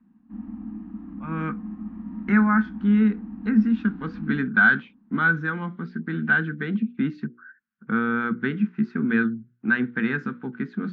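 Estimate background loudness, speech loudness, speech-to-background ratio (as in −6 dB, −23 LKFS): −36.5 LKFS, −24.0 LKFS, 12.5 dB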